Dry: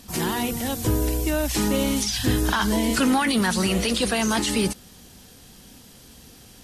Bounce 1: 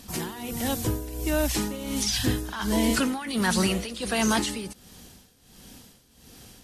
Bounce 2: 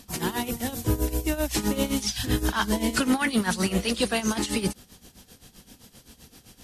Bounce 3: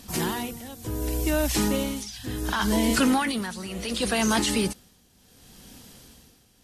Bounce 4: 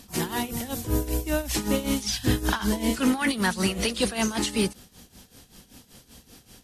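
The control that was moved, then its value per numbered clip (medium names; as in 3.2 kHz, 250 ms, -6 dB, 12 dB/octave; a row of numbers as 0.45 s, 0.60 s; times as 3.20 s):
tremolo, rate: 1.4 Hz, 7.7 Hz, 0.69 Hz, 5.2 Hz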